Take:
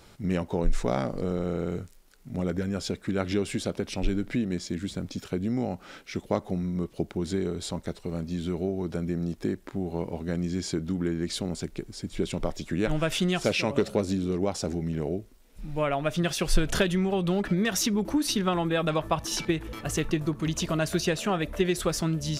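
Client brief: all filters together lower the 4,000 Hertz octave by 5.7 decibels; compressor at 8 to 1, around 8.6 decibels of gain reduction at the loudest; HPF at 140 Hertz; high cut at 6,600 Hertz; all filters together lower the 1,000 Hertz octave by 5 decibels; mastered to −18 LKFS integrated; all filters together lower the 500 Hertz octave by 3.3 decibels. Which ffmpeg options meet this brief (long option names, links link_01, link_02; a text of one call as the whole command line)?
ffmpeg -i in.wav -af "highpass=140,lowpass=6600,equalizer=frequency=500:width_type=o:gain=-3,equalizer=frequency=1000:width_type=o:gain=-5.5,equalizer=frequency=4000:width_type=o:gain=-6.5,acompressor=threshold=-31dB:ratio=8,volume=19dB" out.wav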